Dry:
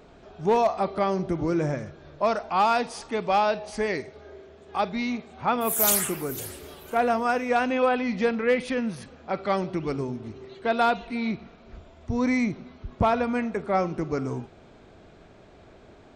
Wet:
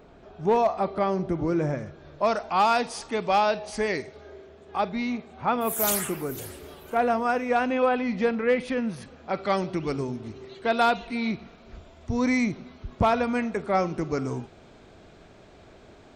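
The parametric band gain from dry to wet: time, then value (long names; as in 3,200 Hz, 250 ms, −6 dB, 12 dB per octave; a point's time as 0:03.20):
parametric band 9,500 Hz 2.9 octaves
0:01.72 −5.5 dB
0:02.38 +3 dB
0:04.17 +3 dB
0:04.80 −4.5 dB
0:08.79 −4.5 dB
0:09.48 +4.5 dB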